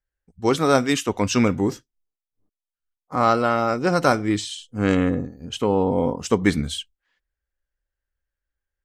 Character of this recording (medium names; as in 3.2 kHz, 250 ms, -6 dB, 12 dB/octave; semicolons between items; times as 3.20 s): noise floor -90 dBFS; spectral tilt -5.5 dB/octave